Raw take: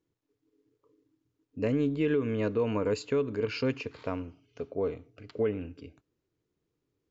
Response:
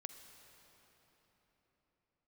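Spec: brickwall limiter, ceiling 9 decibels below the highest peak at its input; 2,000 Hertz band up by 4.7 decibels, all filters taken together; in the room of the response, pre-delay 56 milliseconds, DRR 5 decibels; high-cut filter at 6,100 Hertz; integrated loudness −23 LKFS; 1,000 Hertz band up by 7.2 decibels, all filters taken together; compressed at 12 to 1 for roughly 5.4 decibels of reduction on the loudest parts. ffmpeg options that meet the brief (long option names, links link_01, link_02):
-filter_complex "[0:a]lowpass=6100,equalizer=frequency=1000:width_type=o:gain=7.5,equalizer=frequency=2000:width_type=o:gain=4,acompressor=threshold=-27dB:ratio=12,alimiter=limit=-23.5dB:level=0:latency=1,asplit=2[link_01][link_02];[1:a]atrim=start_sample=2205,adelay=56[link_03];[link_02][link_03]afir=irnorm=-1:irlink=0,volume=-0.5dB[link_04];[link_01][link_04]amix=inputs=2:normalize=0,volume=11.5dB"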